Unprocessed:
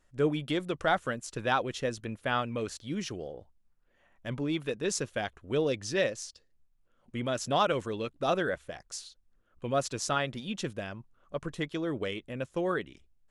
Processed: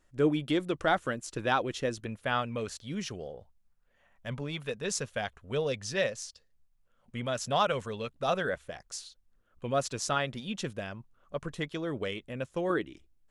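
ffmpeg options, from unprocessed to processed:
ffmpeg -i in.wav -af "asetnsamples=nb_out_samples=441:pad=0,asendcmd='2.06 equalizer g -7.5;3.37 equalizer g -14;8.45 equalizer g -3.5;12.7 equalizer g 7.5',equalizer=frequency=320:width_type=o:width=0.38:gain=4" out.wav

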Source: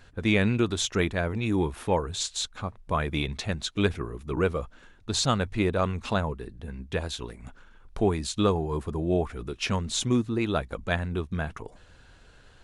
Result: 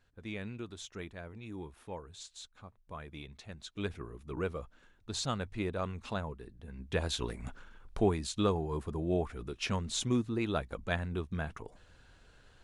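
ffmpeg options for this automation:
ffmpeg -i in.wav -af "volume=2dB,afade=type=in:start_time=3.47:duration=0.61:silence=0.398107,afade=type=in:start_time=6.68:duration=0.67:silence=0.251189,afade=type=out:start_time=7.35:duration=0.86:silence=0.398107" out.wav

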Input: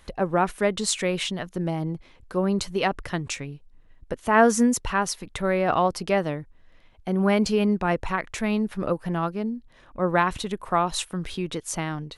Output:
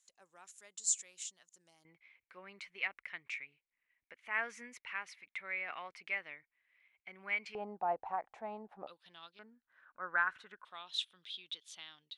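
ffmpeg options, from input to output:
ffmpeg -i in.wav -af "asetnsamples=nb_out_samples=441:pad=0,asendcmd='1.85 bandpass f 2200;7.55 bandpass f 780;8.87 bandpass f 3600;9.39 bandpass f 1500;10.65 bandpass f 3500',bandpass=frequency=7100:width_type=q:width=7.7:csg=0" out.wav

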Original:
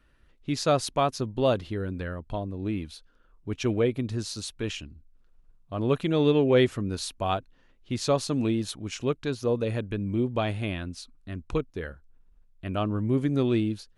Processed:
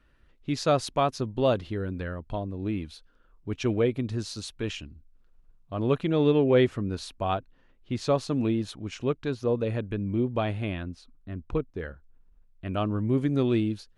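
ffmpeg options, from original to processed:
ffmpeg -i in.wav -af "asetnsamples=nb_out_samples=441:pad=0,asendcmd='5.95 lowpass f 2800;10.83 lowpass f 1300;11.8 lowpass f 3000;12.68 lowpass f 6700',lowpass=frequency=5700:poles=1" out.wav

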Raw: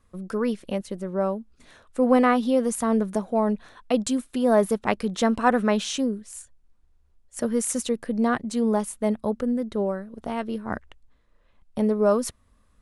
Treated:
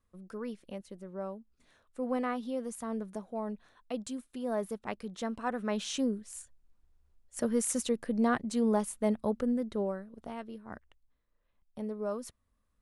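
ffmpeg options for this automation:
ffmpeg -i in.wav -af "volume=-5dB,afade=type=in:start_time=5.59:duration=0.49:silence=0.354813,afade=type=out:start_time=9.49:duration=1.07:silence=0.316228" out.wav

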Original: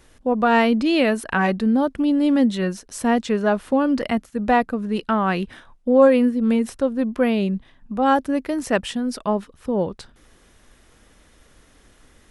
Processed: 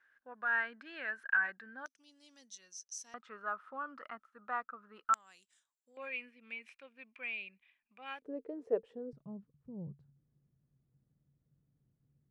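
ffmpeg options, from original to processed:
ffmpeg -i in.wav -af "asetnsamples=nb_out_samples=441:pad=0,asendcmd='1.86 bandpass f 6000;3.14 bandpass f 1300;5.14 bandpass f 7400;5.97 bandpass f 2400;8.22 bandpass f 450;9.13 bandpass f 140',bandpass=frequency=1600:width_type=q:width=13:csg=0" out.wav

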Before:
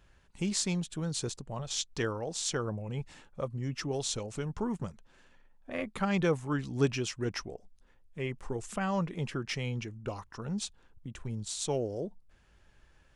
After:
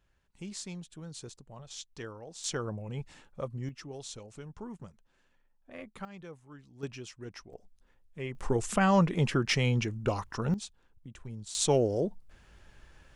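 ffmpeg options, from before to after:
ffmpeg -i in.wav -af "asetnsamples=nb_out_samples=441:pad=0,asendcmd='2.44 volume volume -1.5dB;3.69 volume volume -9.5dB;6.05 volume volume -19dB;6.83 volume volume -10.5dB;7.53 volume volume -2.5dB;8.35 volume volume 7.5dB;10.54 volume volume -5dB;11.55 volume volume 6.5dB',volume=-10dB" out.wav

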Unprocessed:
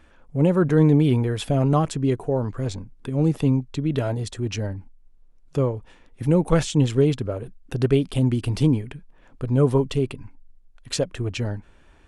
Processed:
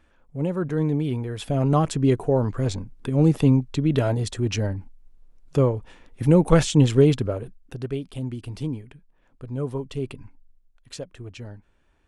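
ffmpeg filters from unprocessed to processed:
ffmpeg -i in.wav -af "volume=9.5dB,afade=type=in:start_time=1.27:duration=0.81:silence=0.334965,afade=type=out:start_time=7.2:duration=0.6:silence=0.237137,afade=type=in:start_time=9.88:duration=0.28:silence=0.446684,afade=type=out:start_time=10.16:duration=0.79:silence=0.375837" out.wav

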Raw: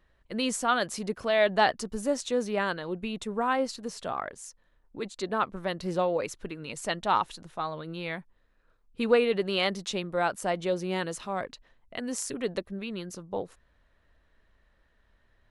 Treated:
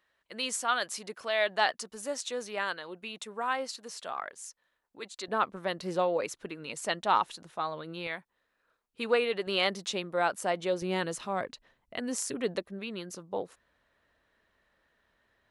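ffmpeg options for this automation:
ffmpeg -i in.wav -af "asetnsamples=nb_out_samples=441:pad=0,asendcmd='5.28 highpass f 280;8.07 highpass f 640;9.47 highpass f 300;10.82 highpass f 100;12.56 highpass f 270',highpass=frequency=1100:poles=1" out.wav

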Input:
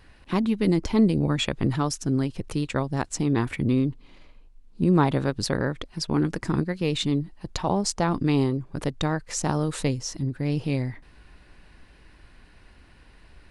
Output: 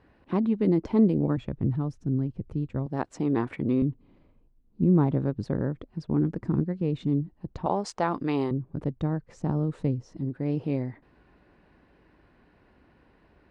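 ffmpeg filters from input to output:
ffmpeg -i in.wav -af "asetnsamples=nb_out_samples=441:pad=0,asendcmd='1.37 bandpass f 100;2.86 bandpass f 490;3.82 bandpass f 170;7.66 bandpass f 830;8.51 bandpass f 160;10.17 bandpass f 390',bandpass=frequency=350:width_type=q:width=0.54:csg=0" out.wav

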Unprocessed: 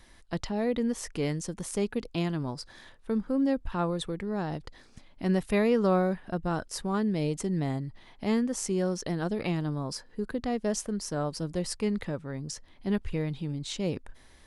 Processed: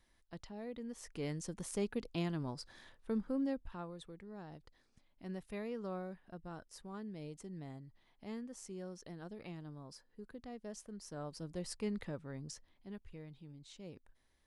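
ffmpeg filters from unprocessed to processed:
ffmpeg -i in.wav -af "volume=1dB,afade=type=in:start_time=0.86:duration=0.67:silence=0.334965,afade=type=out:start_time=3.23:duration=0.63:silence=0.298538,afade=type=in:start_time=10.82:duration=1.05:silence=0.375837,afade=type=out:start_time=12.46:duration=0.42:silence=0.298538" out.wav

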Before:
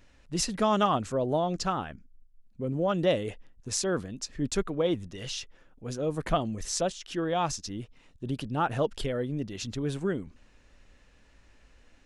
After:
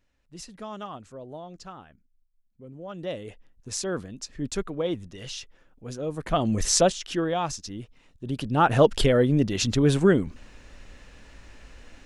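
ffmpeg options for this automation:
ffmpeg -i in.wav -af "volume=22dB,afade=type=in:start_time=2.82:duration=1:silence=0.251189,afade=type=in:start_time=6.31:duration=0.27:silence=0.251189,afade=type=out:start_time=6.58:duration=0.83:silence=0.281838,afade=type=in:start_time=8.25:duration=0.68:silence=0.281838" out.wav

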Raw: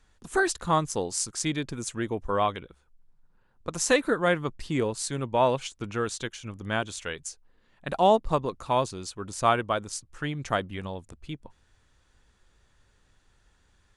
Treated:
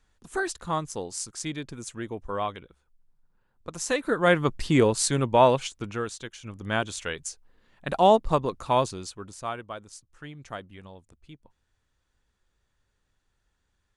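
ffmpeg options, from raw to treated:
ffmpeg -i in.wav -af "volume=15dB,afade=type=in:start_time=4:duration=0.52:silence=0.266073,afade=type=out:start_time=5.06:duration=1.15:silence=0.223872,afade=type=in:start_time=6.21:duration=0.6:silence=0.398107,afade=type=out:start_time=8.87:duration=0.56:silence=0.237137" out.wav

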